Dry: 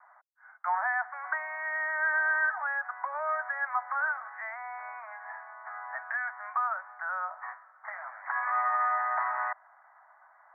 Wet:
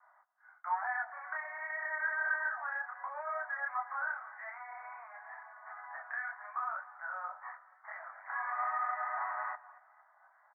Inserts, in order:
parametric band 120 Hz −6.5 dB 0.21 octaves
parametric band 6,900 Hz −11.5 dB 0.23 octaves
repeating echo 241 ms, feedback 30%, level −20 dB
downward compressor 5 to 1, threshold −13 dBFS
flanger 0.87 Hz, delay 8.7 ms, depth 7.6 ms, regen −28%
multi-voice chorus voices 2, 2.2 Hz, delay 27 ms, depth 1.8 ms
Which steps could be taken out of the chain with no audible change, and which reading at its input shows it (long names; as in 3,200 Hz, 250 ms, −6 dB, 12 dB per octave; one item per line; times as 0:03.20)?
parametric band 120 Hz: nothing at its input below 540 Hz
parametric band 6,900 Hz: nothing at its input above 2,300 Hz
downward compressor, threshold −13 dBFS: peak of its input −17.0 dBFS